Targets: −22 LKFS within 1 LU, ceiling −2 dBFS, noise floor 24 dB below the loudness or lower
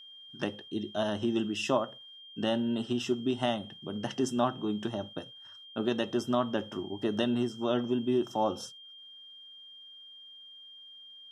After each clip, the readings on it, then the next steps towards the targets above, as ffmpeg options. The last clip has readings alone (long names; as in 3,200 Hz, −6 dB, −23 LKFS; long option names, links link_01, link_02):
interfering tone 3,200 Hz; level of the tone −48 dBFS; integrated loudness −32.0 LKFS; sample peak −14.0 dBFS; target loudness −22.0 LKFS
→ -af "bandreject=frequency=3200:width=30"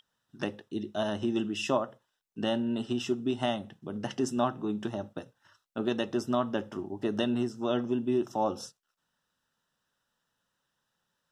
interfering tone none found; integrated loudness −32.0 LKFS; sample peak −14.5 dBFS; target loudness −22.0 LKFS
→ -af "volume=10dB"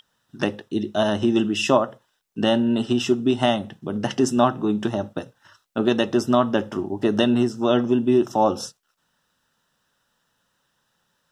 integrated loudness −22.0 LKFS; sample peak −4.5 dBFS; background noise floor −72 dBFS